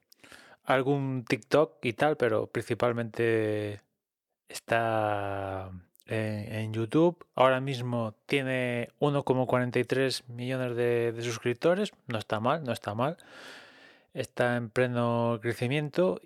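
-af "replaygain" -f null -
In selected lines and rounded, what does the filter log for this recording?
track_gain = +8.8 dB
track_peak = 0.240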